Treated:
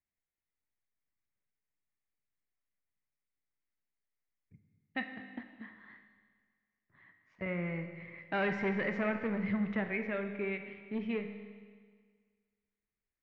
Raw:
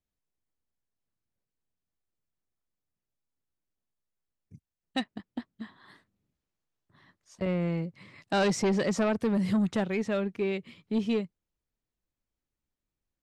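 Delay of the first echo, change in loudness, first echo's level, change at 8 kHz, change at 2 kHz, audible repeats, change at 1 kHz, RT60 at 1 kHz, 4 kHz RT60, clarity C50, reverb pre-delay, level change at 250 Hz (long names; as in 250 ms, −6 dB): no echo audible, −6.5 dB, no echo audible, below −30 dB, +1.0 dB, no echo audible, −6.0 dB, 1.7 s, 1.7 s, 7.5 dB, 20 ms, −7.5 dB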